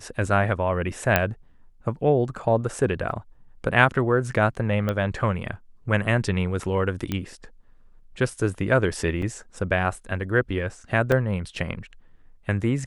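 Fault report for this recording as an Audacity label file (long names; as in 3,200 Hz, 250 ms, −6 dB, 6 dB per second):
1.160000	1.160000	click −4 dBFS
3.110000	3.110000	drop-out 2.5 ms
4.890000	4.890000	click −13 dBFS
7.120000	7.120000	click −13 dBFS
9.220000	9.220000	drop-out 3.7 ms
11.120000	11.120000	drop-out 2.1 ms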